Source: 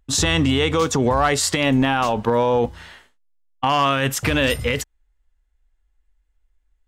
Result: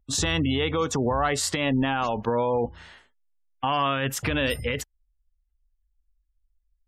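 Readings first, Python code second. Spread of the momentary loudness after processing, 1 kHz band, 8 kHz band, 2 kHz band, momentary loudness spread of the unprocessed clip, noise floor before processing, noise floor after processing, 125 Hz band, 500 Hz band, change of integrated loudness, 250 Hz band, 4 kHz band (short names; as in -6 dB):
6 LU, -6.0 dB, -6.0 dB, -6.0 dB, 6 LU, -68 dBFS, -74 dBFS, -6.0 dB, -6.0 dB, -6.0 dB, -6.0 dB, -6.0 dB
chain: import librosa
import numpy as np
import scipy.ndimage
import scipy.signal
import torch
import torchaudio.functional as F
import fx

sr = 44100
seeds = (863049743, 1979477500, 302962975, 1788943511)

y = fx.spec_gate(x, sr, threshold_db=-30, keep='strong')
y = y * librosa.db_to_amplitude(-6.0)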